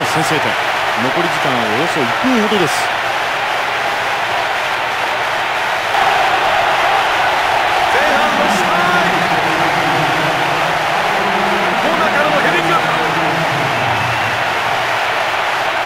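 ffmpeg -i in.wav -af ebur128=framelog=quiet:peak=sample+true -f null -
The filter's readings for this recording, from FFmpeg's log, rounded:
Integrated loudness:
  I:         -13.9 LUFS
  Threshold: -23.9 LUFS
Loudness range:
  LRA:         2.4 LU
  Threshold: -33.8 LUFS
  LRA low:   -15.1 LUFS
  LRA high:  -12.7 LUFS
Sample peak:
  Peak:       -1.5 dBFS
True peak:
  Peak:       -1.5 dBFS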